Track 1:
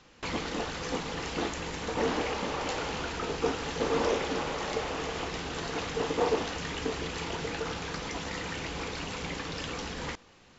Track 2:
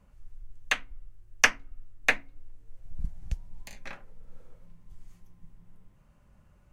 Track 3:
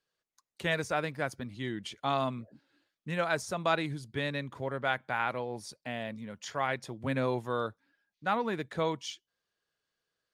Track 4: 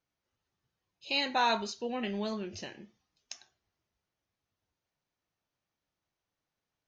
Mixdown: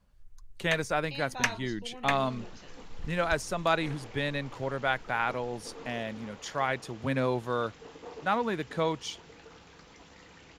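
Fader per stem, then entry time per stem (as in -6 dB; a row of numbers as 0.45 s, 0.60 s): -17.5 dB, -7.0 dB, +2.0 dB, -11.0 dB; 1.85 s, 0.00 s, 0.00 s, 0.00 s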